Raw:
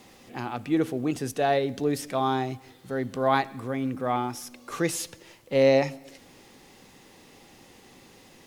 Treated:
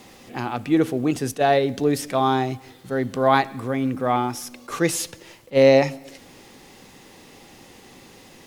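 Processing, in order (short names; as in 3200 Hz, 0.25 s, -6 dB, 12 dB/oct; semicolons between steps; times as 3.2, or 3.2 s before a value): attack slew limiter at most 450 dB/s; gain +5.5 dB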